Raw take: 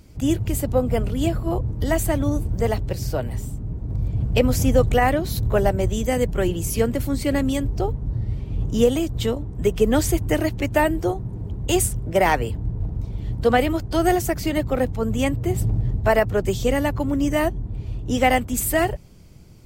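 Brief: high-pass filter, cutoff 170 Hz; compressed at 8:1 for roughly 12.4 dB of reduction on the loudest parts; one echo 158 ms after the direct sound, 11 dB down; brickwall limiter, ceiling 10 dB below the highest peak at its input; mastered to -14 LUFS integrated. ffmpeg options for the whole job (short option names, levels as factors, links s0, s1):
-af "highpass=170,acompressor=threshold=0.0501:ratio=8,alimiter=level_in=1.06:limit=0.0631:level=0:latency=1,volume=0.944,aecho=1:1:158:0.282,volume=10"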